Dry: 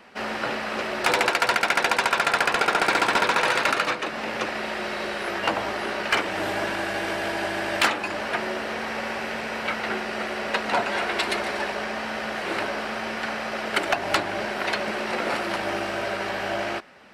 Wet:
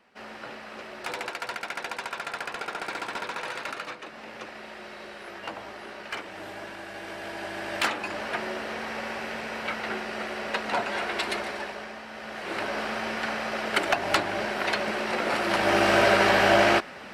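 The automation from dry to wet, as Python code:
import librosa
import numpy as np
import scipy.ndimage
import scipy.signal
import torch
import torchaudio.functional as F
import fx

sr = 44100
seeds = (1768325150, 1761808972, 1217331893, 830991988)

y = fx.gain(x, sr, db=fx.line((6.84, -12.5), (8.01, -4.0), (11.36, -4.0), (12.07, -11.5), (12.79, -1.0), (15.3, -1.0), (15.93, 8.5)))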